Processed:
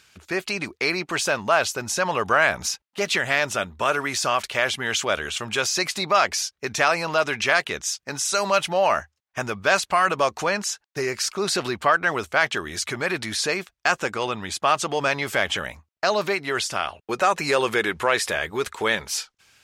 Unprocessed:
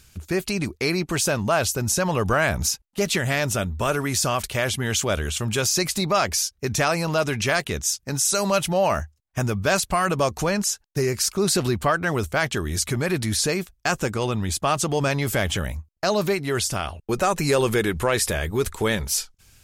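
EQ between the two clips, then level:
high-pass filter 1,300 Hz 6 dB per octave
high-shelf EQ 4,100 Hz −10.5 dB
parametric band 14,000 Hz −9 dB 1.2 octaves
+8.0 dB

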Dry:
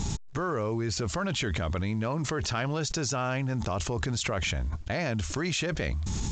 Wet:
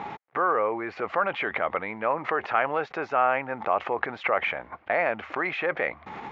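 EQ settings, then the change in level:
loudspeaker in its box 490–2,300 Hz, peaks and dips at 510 Hz +4 dB, 780 Hz +8 dB, 1,200 Hz +5 dB, 2,100 Hz +6 dB
+5.0 dB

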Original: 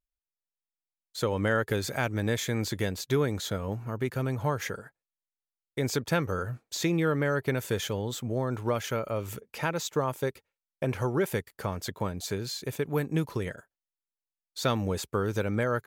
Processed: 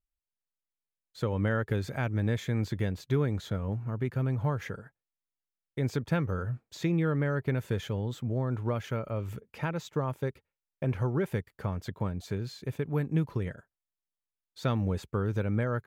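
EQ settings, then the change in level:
bass and treble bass +8 dB, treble −10 dB
−5.0 dB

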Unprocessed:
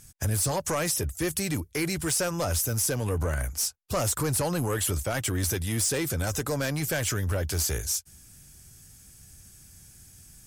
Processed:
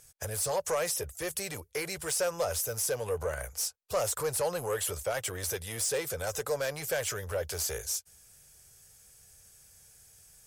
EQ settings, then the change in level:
low shelf with overshoot 370 Hz −8 dB, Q 3
−4.5 dB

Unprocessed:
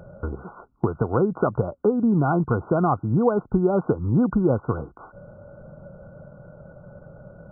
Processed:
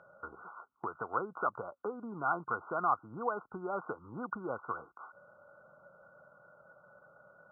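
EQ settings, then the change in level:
resonant band-pass 1,300 Hz, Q 2.4
−1.5 dB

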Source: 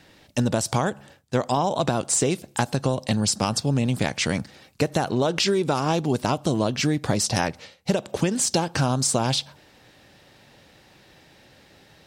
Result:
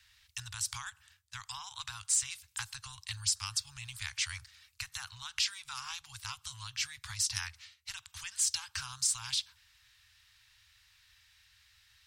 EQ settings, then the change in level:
inverse Chebyshev band-stop filter 160–630 Hz, stop band 40 dB
guitar amp tone stack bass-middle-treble 5-5-5
low-shelf EQ 140 Hz +6 dB
0.0 dB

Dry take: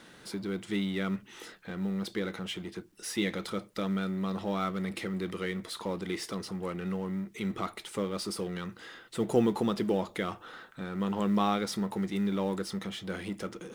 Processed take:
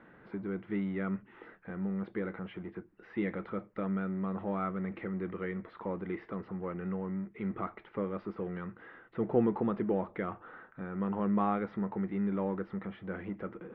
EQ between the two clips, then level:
low-pass filter 2,000 Hz 24 dB per octave
high-frequency loss of the air 77 metres
−2.0 dB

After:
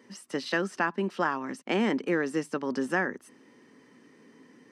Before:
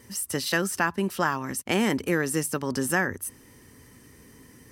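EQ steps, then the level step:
high-pass filter 200 Hz 24 dB per octave
head-to-tape spacing loss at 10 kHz 33 dB
high-shelf EQ 3,200 Hz +10.5 dB
0.0 dB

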